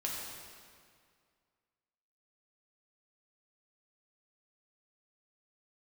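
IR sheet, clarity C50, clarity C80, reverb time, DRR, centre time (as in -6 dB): 0.0 dB, 1.0 dB, 2.1 s, -3.5 dB, 106 ms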